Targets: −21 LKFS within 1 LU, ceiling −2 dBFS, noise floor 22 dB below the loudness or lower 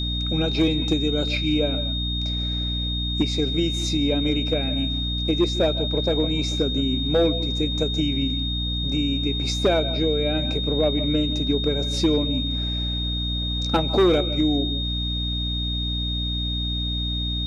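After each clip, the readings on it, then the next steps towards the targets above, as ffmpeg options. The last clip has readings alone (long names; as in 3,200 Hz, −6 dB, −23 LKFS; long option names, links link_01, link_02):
mains hum 60 Hz; hum harmonics up to 300 Hz; level of the hum −25 dBFS; interfering tone 3,700 Hz; level of the tone −27 dBFS; integrated loudness −23.0 LKFS; sample peak −10.0 dBFS; target loudness −21.0 LKFS
→ -af "bandreject=frequency=60:width_type=h:width=4,bandreject=frequency=120:width_type=h:width=4,bandreject=frequency=180:width_type=h:width=4,bandreject=frequency=240:width_type=h:width=4,bandreject=frequency=300:width_type=h:width=4"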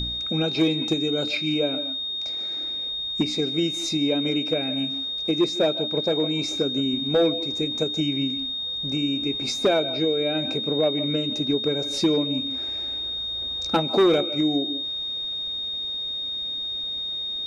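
mains hum none found; interfering tone 3,700 Hz; level of the tone −27 dBFS
→ -af "bandreject=frequency=3700:width=30"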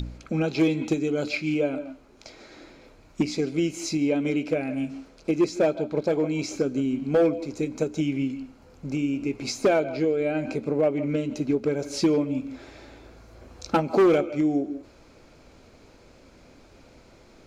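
interfering tone none found; integrated loudness −25.5 LKFS; sample peak −12.5 dBFS; target loudness −21.0 LKFS
→ -af "volume=4.5dB"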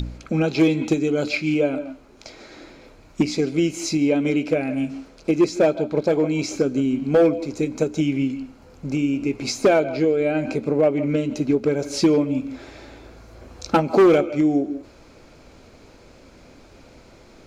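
integrated loudness −21.0 LKFS; sample peak −8.0 dBFS; background noise floor −49 dBFS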